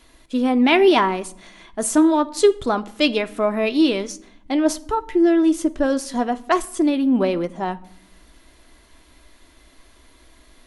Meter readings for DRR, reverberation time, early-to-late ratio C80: 9.0 dB, not exponential, 23.0 dB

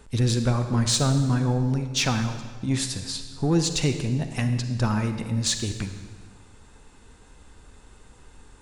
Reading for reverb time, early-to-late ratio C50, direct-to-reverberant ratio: 1.6 s, 8.0 dB, 7.5 dB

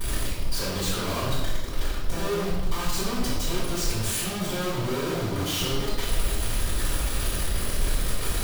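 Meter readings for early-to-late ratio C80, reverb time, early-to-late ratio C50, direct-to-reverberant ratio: 3.5 dB, 1.1 s, 0.5 dB, -10.0 dB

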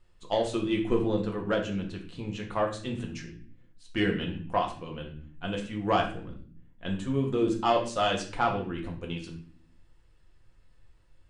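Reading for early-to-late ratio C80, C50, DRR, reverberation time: 12.5 dB, 8.5 dB, 0.0 dB, not exponential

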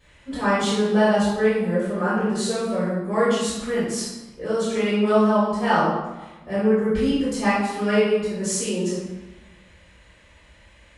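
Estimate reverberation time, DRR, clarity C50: 1.1 s, -15.0 dB, -1.5 dB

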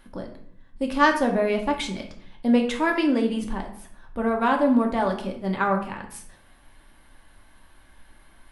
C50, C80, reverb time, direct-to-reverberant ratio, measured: 8.0 dB, 12.5 dB, 0.65 s, 1.5 dB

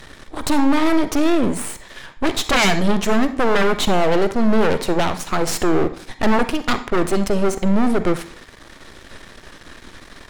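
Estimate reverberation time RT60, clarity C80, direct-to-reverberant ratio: 0.50 s, 16.5 dB, 10.0 dB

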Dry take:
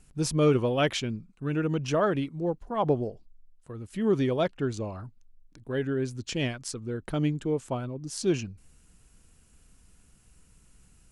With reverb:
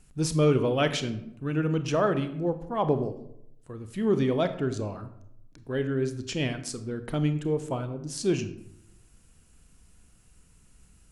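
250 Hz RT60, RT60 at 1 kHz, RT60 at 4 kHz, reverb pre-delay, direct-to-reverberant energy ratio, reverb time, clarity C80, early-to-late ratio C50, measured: 0.95 s, 0.70 s, 0.45 s, 26 ms, 9.5 dB, 0.80 s, 14.5 dB, 12.0 dB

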